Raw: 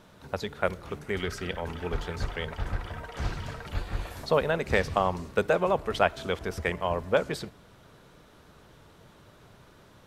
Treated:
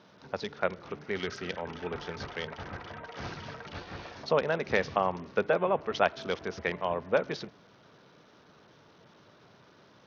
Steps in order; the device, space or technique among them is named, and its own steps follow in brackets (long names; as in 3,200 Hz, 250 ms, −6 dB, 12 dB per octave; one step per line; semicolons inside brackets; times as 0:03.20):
Bluetooth headset (high-pass filter 150 Hz 12 dB per octave; downsampling to 16,000 Hz; level −2 dB; SBC 64 kbit/s 48,000 Hz)